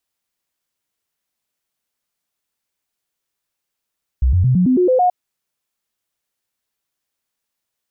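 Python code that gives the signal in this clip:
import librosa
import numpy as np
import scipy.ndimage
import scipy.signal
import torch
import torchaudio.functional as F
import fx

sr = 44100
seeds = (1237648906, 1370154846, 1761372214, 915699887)

y = fx.stepped_sweep(sr, from_hz=63.9, direction='up', per_octave=2, tones=8, dwell_s=0.11, gap_s=0.0, level_db=-10.5)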